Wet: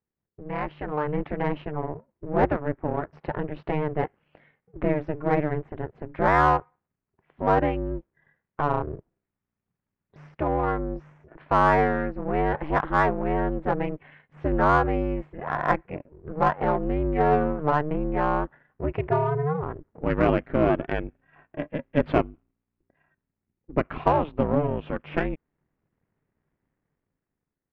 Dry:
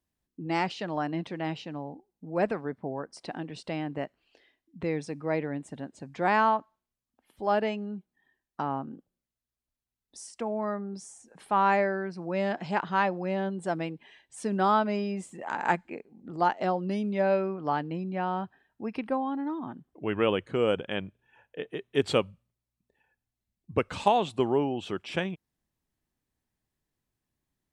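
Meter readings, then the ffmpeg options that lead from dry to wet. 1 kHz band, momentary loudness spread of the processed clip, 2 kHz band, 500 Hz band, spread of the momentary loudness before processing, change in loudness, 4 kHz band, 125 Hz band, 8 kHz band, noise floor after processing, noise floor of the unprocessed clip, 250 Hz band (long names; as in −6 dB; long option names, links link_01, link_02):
+4.0 dB, 14 LU, +3.5 dB, +4.0 dB, 16 LU, +4.0 dB, −7.0 dB, +8.5 dB, below −10 dB, below −85 dBFS, below −85 dBFS, +4.0 dB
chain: -filter_complex "[0:a]aeval=exprs='if(lt(val(0),0),0.447*val(0),val(0))':channel_layout=same,lowpass=frequency=2100:width=0.5412,lowpass=frequency=2100:width=1.3066,dynaudnorm=framelen=180:gausssize=11:maxgain=12dB,aeval=exprs='val(0)*sin(2*PI*150*n/s)':channel_layout=same,asplit=2[link_01][link_02];[link_02]asoftclip=type=tanh:threshold=-19.5dB,volume=-4dB[link_03];[link_01][link_03]amix=inputs=2:normalize=0,volume=-3dB"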